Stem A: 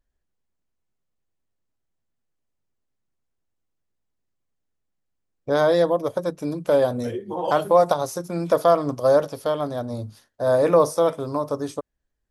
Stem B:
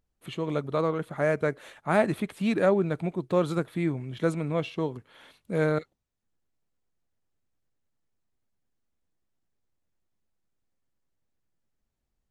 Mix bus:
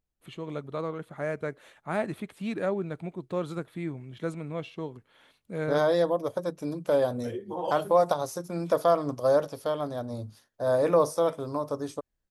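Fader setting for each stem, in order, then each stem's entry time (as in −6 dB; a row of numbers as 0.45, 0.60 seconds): −5.5, −6.5 decibels; 0.20, 0.00 seconds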